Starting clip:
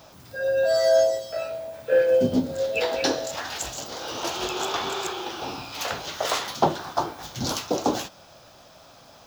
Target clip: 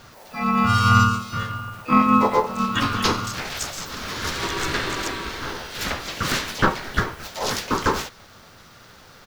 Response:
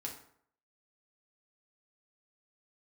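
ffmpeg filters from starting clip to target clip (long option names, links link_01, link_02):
-filter_complex "[0:a]aeval=exprs='val(0)*sin(2*PI*770*n/s)':channel_layout=same,asplit=4[link_01][link_02][link_03][link_04];[link_02]asetrate=29433,aresample=44100,atempo=1.49831,volume=-18dB[link_05];[link_03]asetrate=37084,aresample=44100,atempo=1.18921,volume=0dB[link_06];[link_04]asetrate=88200,aresample=44100,atempo=0.5,volume=-13dB[link_07];[link_01][link_05][link_06][link_07]amix=inputs=4:normalize=0,volume=2.5dB"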